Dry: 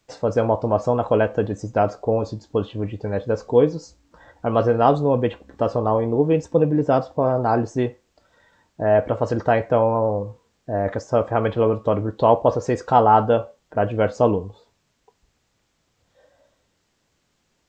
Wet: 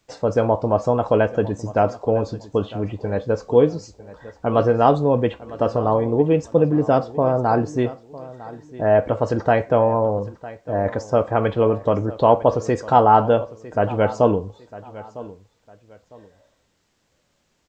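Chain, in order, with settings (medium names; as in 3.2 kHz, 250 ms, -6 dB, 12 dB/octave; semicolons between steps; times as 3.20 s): feedback delay 954 ms, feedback 28%, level -18 dB; trim +1 dB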